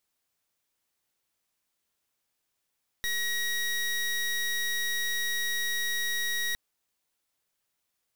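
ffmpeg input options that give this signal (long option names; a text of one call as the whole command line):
ffmpeg -f lavfi -i "aevalsrc='0.0335*(2*lt(mod(1900*t,1),0.24)-1)':duration=3.51:sample_rate=44100" out.wav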